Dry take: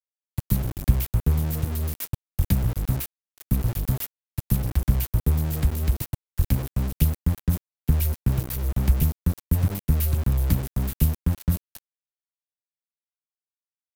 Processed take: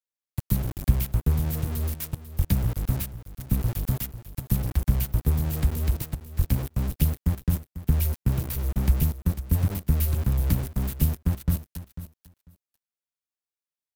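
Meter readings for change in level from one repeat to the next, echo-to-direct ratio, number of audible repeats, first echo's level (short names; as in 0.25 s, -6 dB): -16.5 dB, -13.5 dB, 2, -13.5 dB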